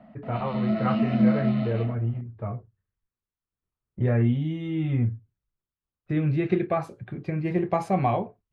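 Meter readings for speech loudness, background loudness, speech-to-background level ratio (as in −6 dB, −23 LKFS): −27.5 LKFS, −25.5 LKFS, −2.0 dB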